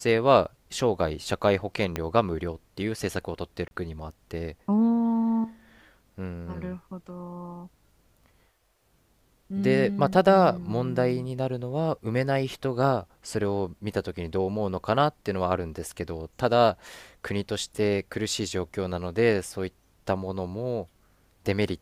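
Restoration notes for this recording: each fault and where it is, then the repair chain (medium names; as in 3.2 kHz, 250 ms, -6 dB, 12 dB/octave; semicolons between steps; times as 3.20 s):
1.96 s: pop -13 dBFS
3.68–3.71 s: dropout 31 ms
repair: de-click; interpolate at 3.68 s, 31 ms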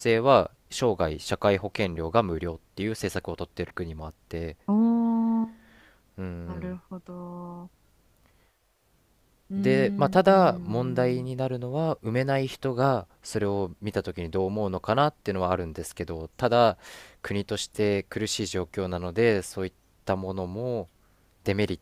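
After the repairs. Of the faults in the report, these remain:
1.96 s: pop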